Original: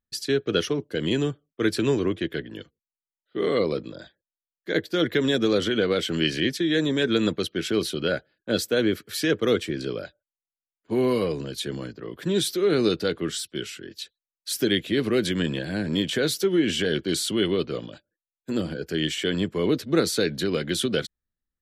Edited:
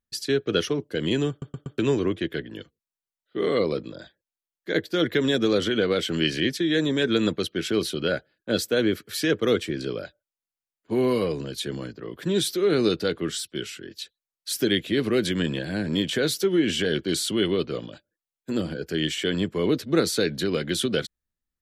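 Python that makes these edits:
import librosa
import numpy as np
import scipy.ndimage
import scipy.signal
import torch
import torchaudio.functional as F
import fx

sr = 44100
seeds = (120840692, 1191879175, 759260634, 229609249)

y = fx.edit(x, sr, fx.stutter_over(start_s=1.3, slice_s=0.12, count=4), tone=tone)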